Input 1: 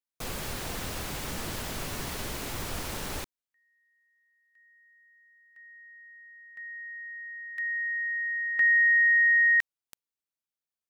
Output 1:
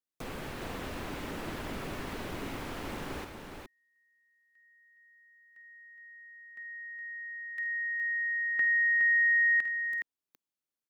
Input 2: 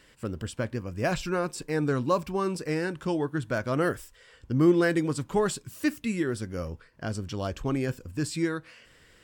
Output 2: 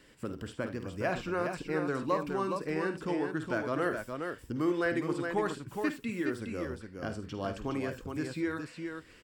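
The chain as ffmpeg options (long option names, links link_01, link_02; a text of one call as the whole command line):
ffmpeg -i in.wav -filter_complex "[0:a]acrossover=split=560|3200[link_01][link_02][link_03];[link_01]acompressor=threshold=-38dB:ratio=4[link_04];[link_02]acompressor=threshold=-23dB:ratio=4[link_05];[link_03]acompressor=threshold=-53dB:ratio=4[link_06];[link_04][link_05][link_06]amix=inputs=3:normalize=0,equalizer=frequency=290:width_type=o:width=1.4:gain=7,aecho=1:1:51|76|416:0.282|0.178|0.531,volume=-3.5dB" out.wav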